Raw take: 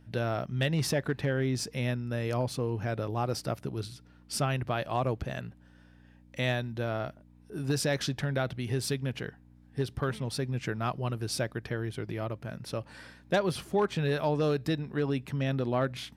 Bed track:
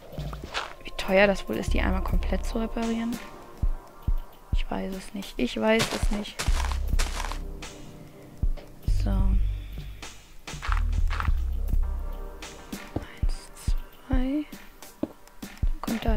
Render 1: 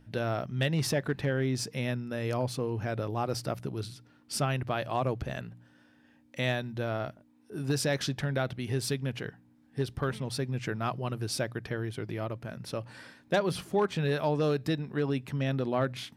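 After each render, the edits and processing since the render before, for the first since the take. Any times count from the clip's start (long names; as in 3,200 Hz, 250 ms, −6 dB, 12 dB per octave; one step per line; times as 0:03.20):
hum removal 60 Hz, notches 3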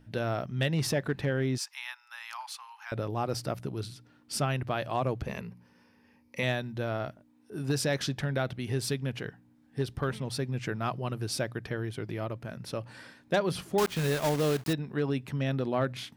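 0:01.58–0:02.92: Chebyshev high-pass filter 840 Hz, order 6
0:05.27–0:06.43: EQ curve with evenly spaced ripples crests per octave 0.85, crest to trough 11 dB
0:13.78–0:14.74: one scale factor per block 3 bits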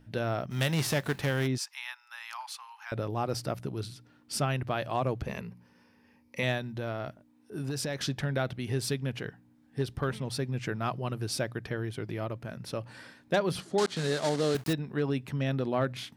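0:00.50–0:01.46: spectral envelope flattened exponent 0.6
0:06.57–0:08.02: downward compressor, threshold −29 dBFS
0:13.60–0:14.55: loudspeaker in its box 160–9,200 Hz, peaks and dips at 1,000 Hz −4 dB, 2,500 Hz −6 dB, 4,200 Hz +5 dB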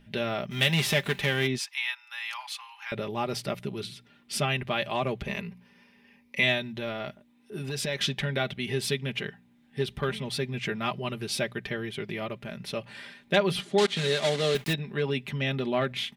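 flat-topped bell 2,700 Hz +8.5 dB 1.2 octaves
comb filter 5 ms, depth 64%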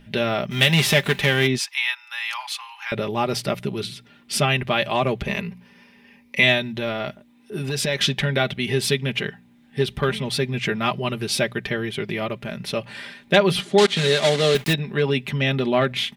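level +7.5 dB
brickwall limiter −2 dBFS, peak gain reduction 1.5 dB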